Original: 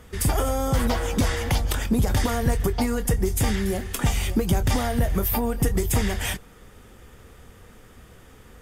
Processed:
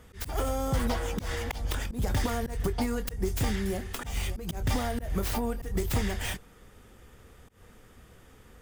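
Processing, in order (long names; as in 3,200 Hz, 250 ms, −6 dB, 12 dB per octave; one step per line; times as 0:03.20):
stylus tracing distortion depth 0.11 ms
volume swells 141 ms
level −5.5 dB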